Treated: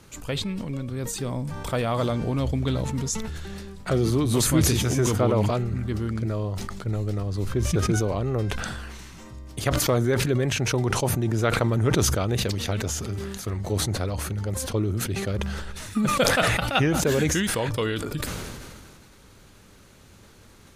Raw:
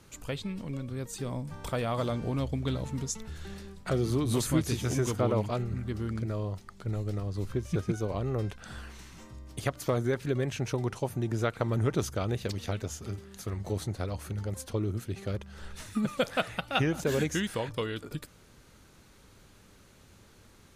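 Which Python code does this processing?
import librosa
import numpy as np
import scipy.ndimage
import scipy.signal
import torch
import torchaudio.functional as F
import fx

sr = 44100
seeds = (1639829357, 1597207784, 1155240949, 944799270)

y = fx.sustainer(x, sr, db_per_s=28.0)
y = y * 10.0 ** (5.0 / 20.0)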